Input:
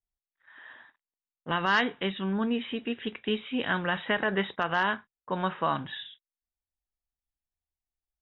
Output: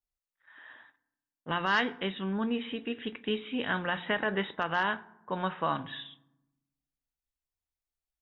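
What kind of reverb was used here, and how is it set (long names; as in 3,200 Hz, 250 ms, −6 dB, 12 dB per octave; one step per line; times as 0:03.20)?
feedback delay network reverb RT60 0.86 s, low-frequency decay 1.5×, high-frequency decay 0.5×, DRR 15.5 dB
level −2.5 dB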